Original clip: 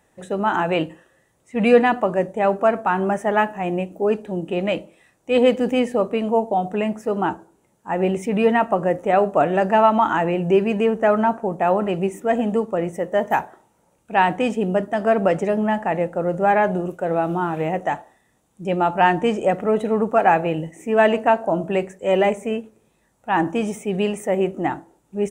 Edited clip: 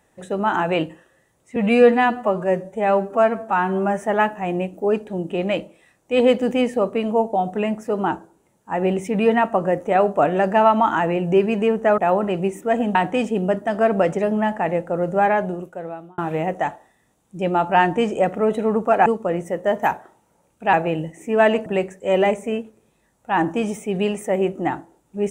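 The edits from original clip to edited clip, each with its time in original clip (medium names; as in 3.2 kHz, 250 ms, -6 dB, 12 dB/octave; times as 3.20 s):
1.56–3.20 s: stretch 1.5×
11.16–11.57 s: delete
12.54–14.21 s: move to 20.32 s
16.45–17.44 s: fade out
21.25–21.65 s: delete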